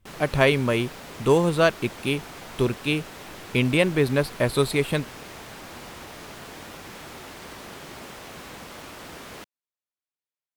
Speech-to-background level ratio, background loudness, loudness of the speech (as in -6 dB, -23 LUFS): 16.5 dB, -40.0 LUFS, -23.5 LUFS